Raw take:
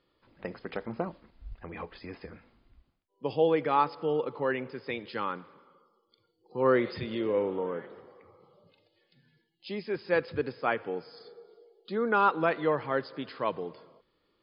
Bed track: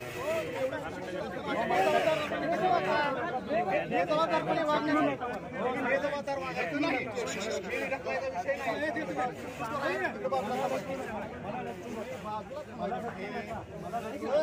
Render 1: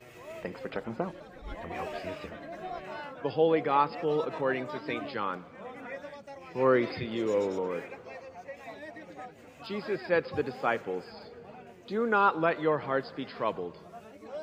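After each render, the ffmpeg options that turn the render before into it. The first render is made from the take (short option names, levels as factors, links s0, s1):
-filter_complex "[1:a]volume=0.251[s0];[0:a][s0]amix=inputs=2:normalize=0"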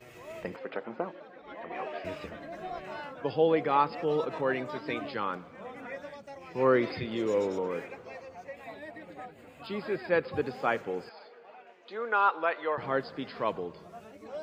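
-filter_complex "[0:a]asettb=1/sr,asplit=3[s0][s1][s2];[s0]atrim=end=0.564[s3];[s1]atrim=start=0.56:end=2.05,asetpts=PTS-STARTPTS,afade=t=in:d=0.004:c=qsin,afade=t=out:st=1.486:d=0.004:c=qsin,highpass=280,lowpass=3100[s4];[s2]atrim=start=2.046[s5];[s3][s4]acrossfade=d=0.004:c1=hsin:c2=qsin[s6];[s6][s5]acrossfade=d=0.004:c1=qsin:c2=hsin,asettb=1/sr,asplit=3[s7][s8][s9];[s7]atrim=end=8.534[s10];[s8]atrim=start=8.53:end=10.42,asetpts=PTS-STARTPTS,afade=t=in:d=0.004:c=qsin,afade=t=out:st=1.886:d=0.004:c=qsin,equalizer=f=5900:t=o:w=0.3:g=-14.5[s11];[s9]atrim=start=10.416[s12];[s10][s11]acrossfade=d=0.004:c1=hsin:c2=qsin[s13];[s13][s12]acrossfade=d=0.004:c1=qsin:c2=hsin,asettb=1/sr,asplit=3[s14][s15][s16];[s14]atrim=end=11.094[s17];[s15]atrim=start=11.09:end=12.78,asetpts=PTS-STARTPTS,afade=t=in:d=0.004:c=qsin,afade=t=out:st=1.686:d=0.004:c=qsin,highpass=590,lowpass=3900[s18];[s16]atrim=start=12.776[s19];[s17][s18]acrossfade=d=0.004:c1=hsin:c2=qsin[s20];[s20][s19]acrossfade=d=0.004:c1=qsin:c2=hsin"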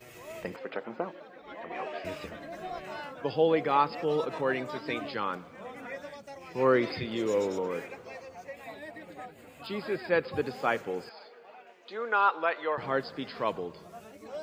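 -af "highshelf=f=5200:g=9"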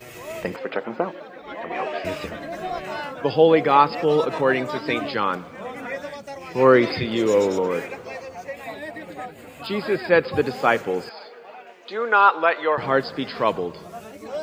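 -af "volume=2.99"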